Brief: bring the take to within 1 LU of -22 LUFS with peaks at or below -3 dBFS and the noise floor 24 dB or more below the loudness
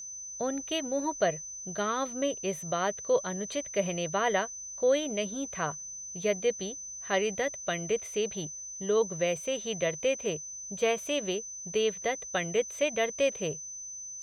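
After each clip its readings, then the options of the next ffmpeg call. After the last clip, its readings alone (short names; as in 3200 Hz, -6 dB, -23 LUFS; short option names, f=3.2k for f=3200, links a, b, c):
steady tone 6100 Hz; tone level -39 dBFS; loudness -31.0 LUFS; peak -13.5 dBFS; loudness target -22.0 LUFS
-> -af "bandreject=f=6.1k:w=30"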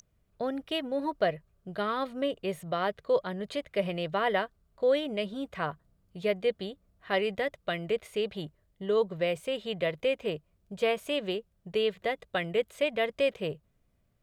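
steady tone none; loudness -31.5 LUFS; peak -14.0 dBFS; loudness target -22.0 LUFS
-> -af "volume=9.5dB"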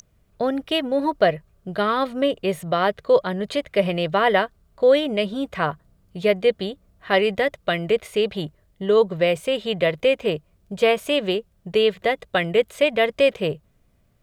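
loudness -22.0 LUFS; peak -4.5 dBFS; noise floor -62 dBFS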